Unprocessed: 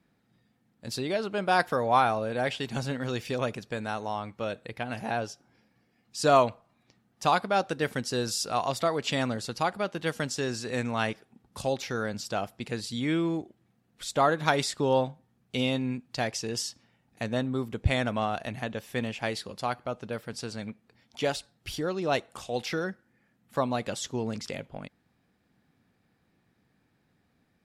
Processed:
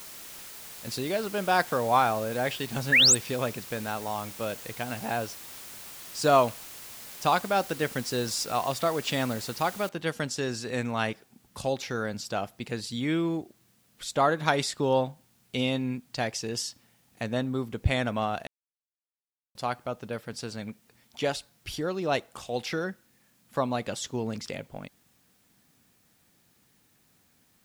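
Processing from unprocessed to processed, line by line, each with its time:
2.92–3.15 s: painted sound rise 1.6–8.8 kHz -18 dBFS
9.89 s: noise floor step -44 dB -67 dB
18.47–19.55 s: mute

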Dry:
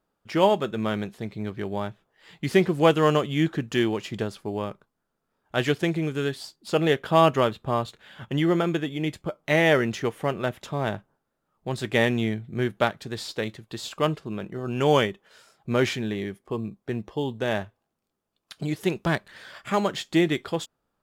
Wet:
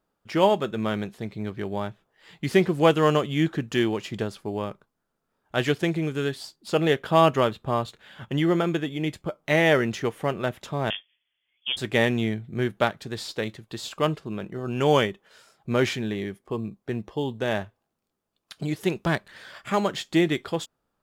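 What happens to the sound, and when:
10.90–11.77 s: frequency inversion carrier 3.4 kHz

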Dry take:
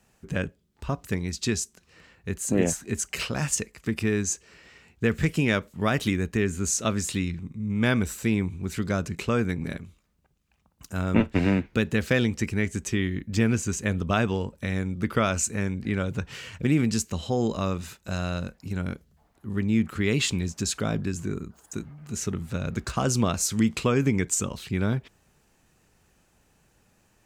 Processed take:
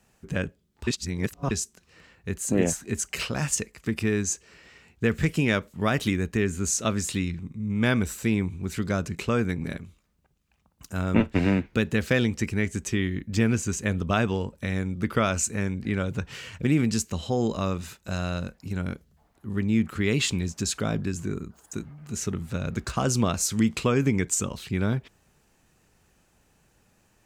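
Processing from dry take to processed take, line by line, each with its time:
0.87–1.51 s: reverse

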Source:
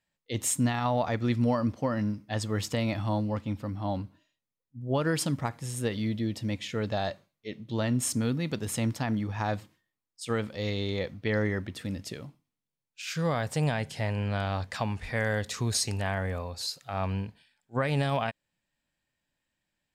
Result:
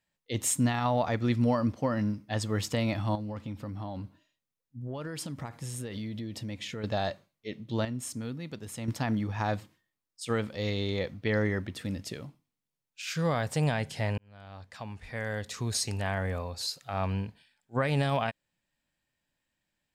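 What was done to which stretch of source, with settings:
3.15–6.84 s: compression 10:1, threshold -33 dBFS
7.85–8.88 s: gain -8.5 dB
14.18–16.30 s: fade in linear

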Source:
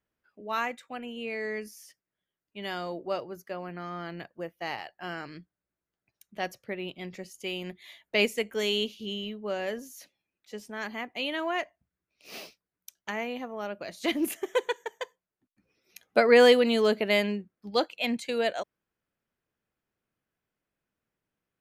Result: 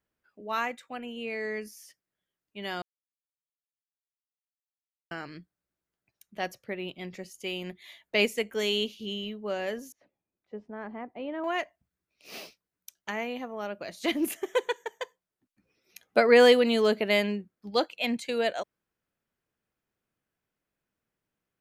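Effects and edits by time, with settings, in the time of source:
2.82–5.11 s: mute
9.92–11.44 s: low-pass 1 kHz

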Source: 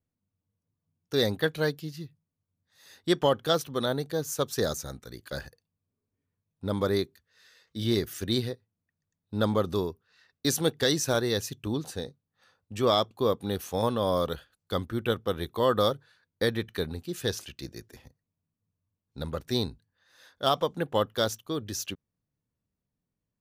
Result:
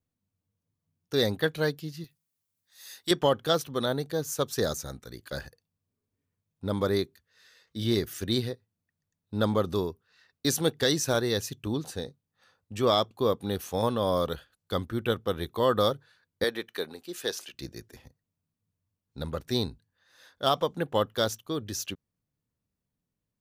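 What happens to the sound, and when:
2.04–3.11 s: tilt EQ +3.5 dB/octave
16.44–17.54 s: high-pass 360 Hz

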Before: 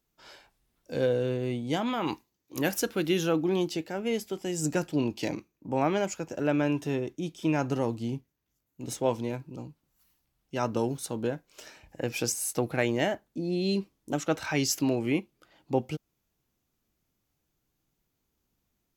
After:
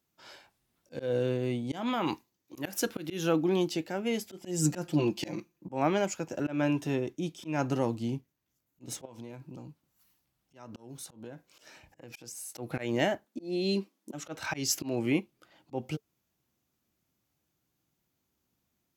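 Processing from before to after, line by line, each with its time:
4.30–5.67 s: comb 5.8 ms, depth 90%
9.05–12.55 s: compression, threshold -39 dBFS
13.24–14.14 s: brick-wall FIR high-pass 180 Hz
whole clip: high-pass 79 Hz 12 dB/octave; band-stop 440 Hz, Q 12; slow attack 168 ms

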